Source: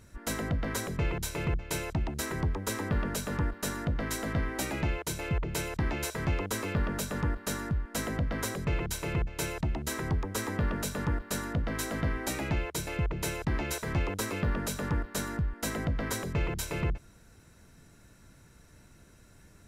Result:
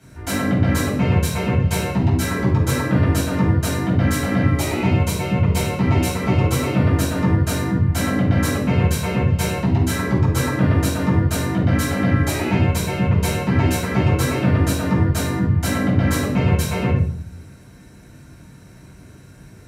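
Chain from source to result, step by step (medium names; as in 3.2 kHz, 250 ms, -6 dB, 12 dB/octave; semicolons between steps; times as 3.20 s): 4.43–6.87 s: band-stop 1.6 kHz, Q 7.1; frequency shift +35 Hz; simulated room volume 570 m³, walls furnished, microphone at 7.8 m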